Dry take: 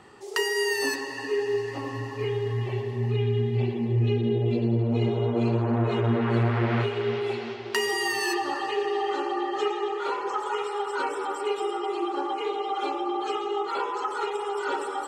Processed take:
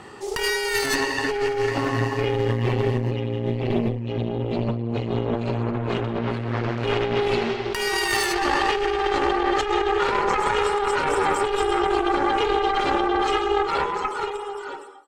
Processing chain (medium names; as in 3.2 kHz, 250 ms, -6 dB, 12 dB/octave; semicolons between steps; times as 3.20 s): fade out at the end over 2.09 s; Chebyshev shaper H 4 -9 dB, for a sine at -12 dBFS; compressor with a negative ratio -29 dBFS, ratio -1; trim +6 dB